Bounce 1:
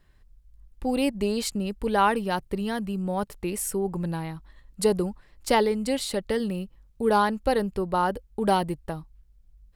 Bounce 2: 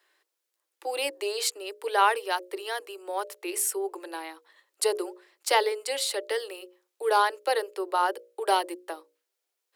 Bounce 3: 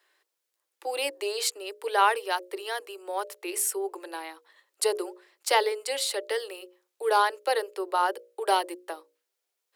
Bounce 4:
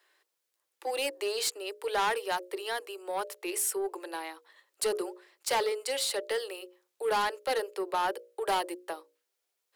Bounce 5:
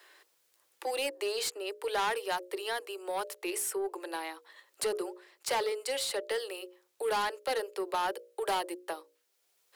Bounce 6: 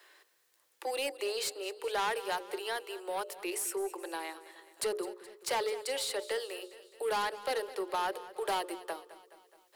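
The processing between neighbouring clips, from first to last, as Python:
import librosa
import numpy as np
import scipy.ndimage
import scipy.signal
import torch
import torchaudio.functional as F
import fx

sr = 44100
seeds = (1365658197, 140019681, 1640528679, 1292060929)

y1 = scipy.signal.sosfilt(scipy.signal.butter(16, 320.0, 'highpass', fs=sr, output='sos'), x)
y1 = fx.tilt_shelf(y1, sr, db=-3.5, hz=970.0)
y1 = fx.hum_notches(y1, sr, base_hz=60, count=10)
y2 = fx.peak_eq(y1, sr, hz=320.0, db=-2.5, octaves=0.26)
y3 = 10.0 ** (-23.5 / 20.0) * np.tanh(y2 / 10.0 ** (-23.5 / 20.0))
y4 = fx.band_squash(y3, sr, depth_pct=40)
y4 = y4 * 10.0 ** (-1.5 / 20.0)
y5 = fx.echo_feedback(y4, sr, ms=211, feedback_pct=56, wet_db=-16.0)
y5 = y5 * 10.0 ** (-1.5 / 20.0)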